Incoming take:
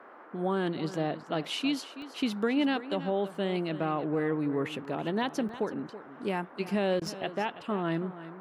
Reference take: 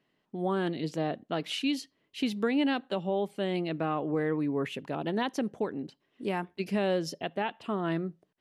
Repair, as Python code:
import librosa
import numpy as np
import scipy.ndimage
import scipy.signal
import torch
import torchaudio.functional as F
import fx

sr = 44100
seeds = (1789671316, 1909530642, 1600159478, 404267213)

y = fx.fix_interpolate(x, sr, at_s=(2.02, 3.35, 5.49, 7.07), length_ms=1.4)
y = fx.fix_interpolate(y, sr, at_s=(7.0,), length_ms=14.0)
y = fx.noise_reduce(y, sr, print_start_s=0.0, print_end_s=0.5, reduce_db=26.0)
y = fx.fix_echo_inverse(y, sr, delay_ms=327, level_db=-14.0)